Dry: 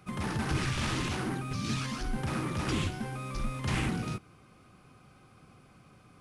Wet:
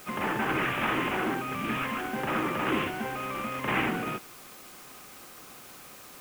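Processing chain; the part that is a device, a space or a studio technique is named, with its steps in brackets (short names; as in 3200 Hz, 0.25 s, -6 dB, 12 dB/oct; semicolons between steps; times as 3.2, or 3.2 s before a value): army field radio (BPF 320–3100 Hz; CVSD 16 kbps; white noise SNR 18 dB); gain +8.5 dB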